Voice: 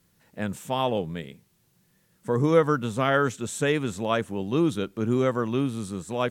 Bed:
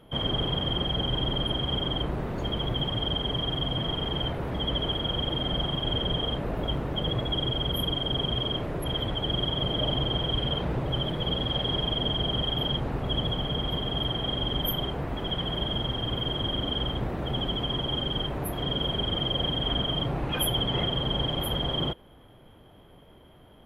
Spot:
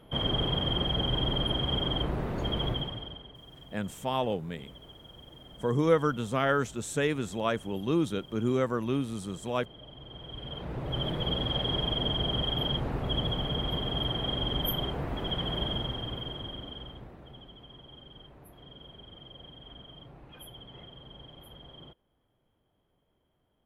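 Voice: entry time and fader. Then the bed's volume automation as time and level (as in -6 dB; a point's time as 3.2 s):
3.35 s, -4.0 dB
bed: 2.69 s -1 dB
3.34 s -22 dB
9.93 s -22 dB
11.06 s -2 dB
15.67 s -2 dB
17.5 s -21.5 dB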